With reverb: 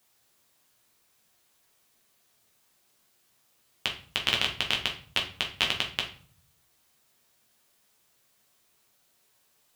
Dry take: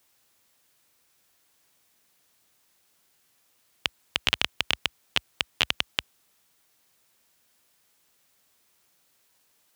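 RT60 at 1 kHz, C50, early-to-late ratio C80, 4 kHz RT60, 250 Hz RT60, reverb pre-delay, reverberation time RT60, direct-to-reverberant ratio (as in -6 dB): 0.45 s, 9.0 dB, 14.5 dB, 0.35 s, 0.80 s, 8 ms, 0.45 s, -0.5 dB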